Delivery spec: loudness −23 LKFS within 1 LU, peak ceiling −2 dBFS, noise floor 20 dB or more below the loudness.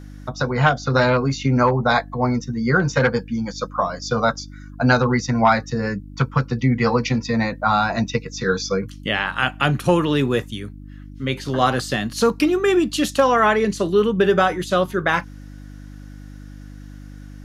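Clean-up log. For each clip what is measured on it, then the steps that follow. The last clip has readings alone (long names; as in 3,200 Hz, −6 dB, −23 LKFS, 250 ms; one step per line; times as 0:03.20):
mains hum 50 Hz; hum harmonics up to 300 Hz; level of the hum −35 dBFS; integrated loudness −20.0 LKFS; sample peak −2.0 dBFS; target loudness −23.0 LKFS
→ hum removal 50 Hz, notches 6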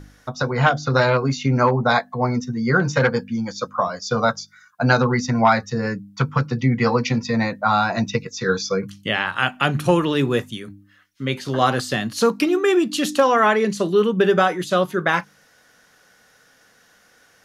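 mains hum none found; integrated loudness −20.0 LKFS; sample peak −2.5 dBFS; target loudness −23.0 LKFS
→ level −3 dB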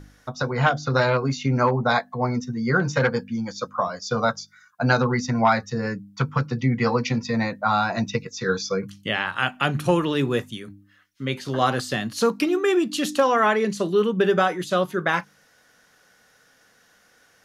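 integrated loudness −23.0 LKFS; sample peak −5.5 dBFS; background noise floor −59 dBFS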